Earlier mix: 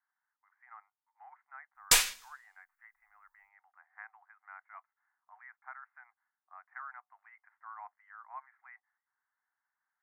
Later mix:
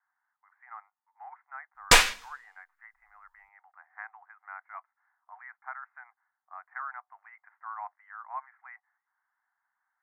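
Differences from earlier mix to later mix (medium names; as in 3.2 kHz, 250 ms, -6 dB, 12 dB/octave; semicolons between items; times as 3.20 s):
speech -4.5 dB; master: remove pre-emphasis filter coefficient 0.8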